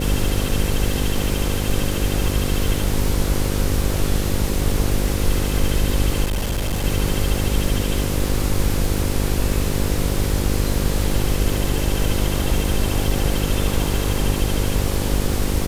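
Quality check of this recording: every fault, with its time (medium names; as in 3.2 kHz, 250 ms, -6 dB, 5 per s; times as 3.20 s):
buzz 50 Hz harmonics 11 -23 dBFS
crackle 500 per s -28 dBFS
6.24–6.85 s: clipped -18 dBFS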